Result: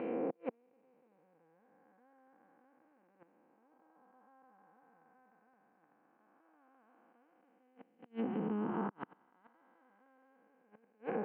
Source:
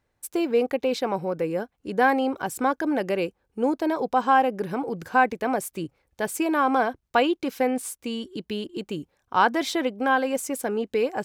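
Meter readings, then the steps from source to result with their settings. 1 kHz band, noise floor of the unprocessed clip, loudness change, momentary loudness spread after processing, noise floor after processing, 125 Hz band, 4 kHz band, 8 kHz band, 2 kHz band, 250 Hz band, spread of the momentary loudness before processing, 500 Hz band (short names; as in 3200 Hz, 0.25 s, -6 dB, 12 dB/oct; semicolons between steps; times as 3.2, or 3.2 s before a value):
-26.5 dB, -75 dBFS, -15.0 dB, 12 LU, -73 dBFS, -12.5 dB, under -30 dB, under -40 dB, -29.5 dB, -17.0 dB, 11 LU, -20.5 dB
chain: time blur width 1.05 s; air absorption 260 m; flipped gate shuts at -27 dBFS, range -40 dB; speaker cabinet 210–2300 Hz, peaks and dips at 270 Hz -4 dB, 390 Hz -9 dB, 590 Hz -6 dB; treble ducked by the level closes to 1300 Hz, closed at -40 dBFS; gain +7.5 dB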